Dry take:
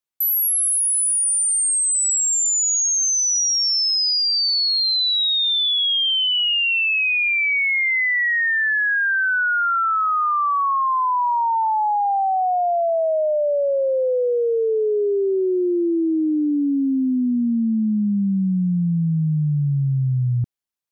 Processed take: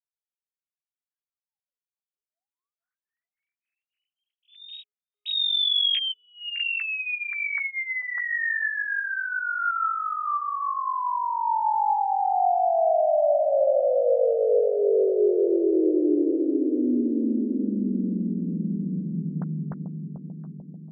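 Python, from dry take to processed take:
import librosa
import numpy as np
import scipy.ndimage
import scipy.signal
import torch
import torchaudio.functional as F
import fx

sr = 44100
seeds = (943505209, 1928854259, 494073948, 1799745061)

y = fx.sine_speech(x, sr)
y = fx.chorus_voices(y, sr, voices=6, hz=0.35, base_ms=13, depth_ms=4.0, mix_pct=25)
y = fx.echo_bbd(y, sr, ms=441, stages=2048, feedback_pct=65, wet_db=-5.5)
y = F.gain(torch.from_numpy(y), -5.0).numpy()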